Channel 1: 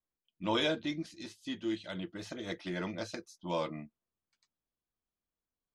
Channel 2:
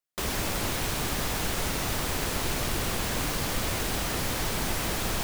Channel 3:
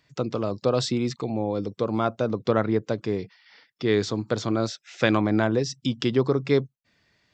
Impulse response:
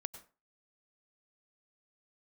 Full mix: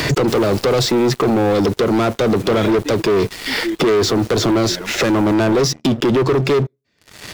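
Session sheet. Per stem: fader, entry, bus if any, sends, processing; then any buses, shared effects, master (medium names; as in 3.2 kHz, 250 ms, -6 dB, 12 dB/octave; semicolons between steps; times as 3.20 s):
-5.0 dB, 2.00 s, no bus, send -19 dB, high-pass 90 Hz 12 dB/octave; reverb removal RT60 1.9 s
-7.5 dB, 0.10 s, bus A, send -14.5 dB, peak limiter -28 dBFS, peak gain reduction 11 dB; auto duck -12 dB, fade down 1.50 s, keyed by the third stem
-1.5 dB, 0.00 s, bus A, send -22.5 dB, three bands compressed up and down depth 100%
bus A: 0.0 dB, waveshaping leveller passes 2; peak limiter -15 dBFS, peak gain reduction 7.5 dB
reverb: on, RT60 0.35 s, pre-delay 87 ms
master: peaking EQ 390 Hz +8 dB 0.73 oct; waveshaping leveller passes 3; peak limiter -11 dBFS, peak gain reduction 3.5 dB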